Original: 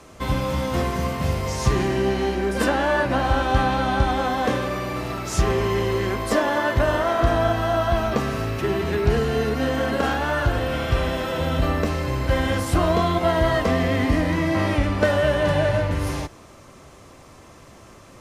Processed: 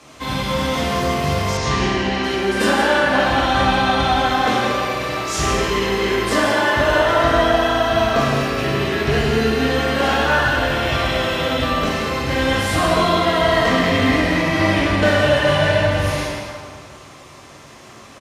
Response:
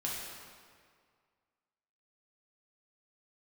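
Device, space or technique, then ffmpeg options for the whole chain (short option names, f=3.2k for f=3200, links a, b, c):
PA in a hall: -filter_complex "[0:a]highpass=f=120:p=1,equalizer=f=3.5k:t=o:w=2.4:g=6.5,aecho=1:1:166:0.335[a];[1:a]atrim=start_sample=2205[b];[a][b]afir=irnorm=-1:irlink=0,asettb=1/sr,asplit=3[c][d][e];[c]atrim=end=1.574[f];[d]atrim=start=1.57:end=2.24,asetpts=PTS-STARTPTS,afade=t=in:d=0.004:c=qsin,afade=t=out:st=0.666:d=0.004:c=qsin,lowpass=5.5k[g];[e]atrim=start=2.236[h];[f][g]acrossfade=d=0.004:c1=hsin:c2=qsin[i];[i][h]acrossfade=d=0.004:c1=qsin:c2=hsin"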